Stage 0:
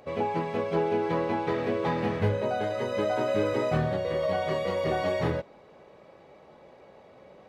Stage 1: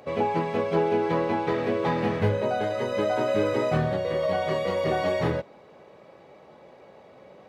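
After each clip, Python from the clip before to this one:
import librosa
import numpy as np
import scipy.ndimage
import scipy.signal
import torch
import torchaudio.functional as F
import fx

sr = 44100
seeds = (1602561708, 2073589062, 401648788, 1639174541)

y = scipy.signal.sosfilt(scipy.signal.butter(2, 77.0, 'highpass', fs=sr, output='sos'), x)
y = fx.rider(y, sr, range_db=10, speed_s=2.0)
y = F.gain(torch.from_numpy(y), 2.5).numpy()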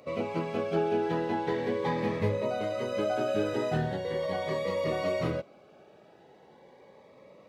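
y = fx.low_shelf(x, sr, hz=110.0, db=-6.0)
y = fx.notch_cascade(y, sr, direction='rising', hz=0.4)
y = F.gain(torch.from_numpy(y), -2.5).numpy()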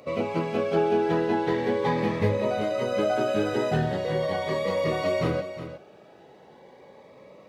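y = x + 10.0 ** (-11.5 / 20.0) * np.pad(x, (int(361 * sr / 1000.0), 0))[:len(x)]
y = F.gain(torch.from_numpy(y), 4.5).numpy()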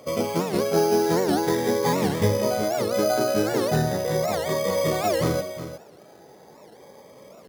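y = np.repeat(scipy.signal.resample_poly(x, 1, 8), 8)[:len(x)]
y = fx.record_warp(y, sr, rpm=78.0, depth_cents=250.0)
y = F.gain(torch.from_numpy(y), 2.5).numpy()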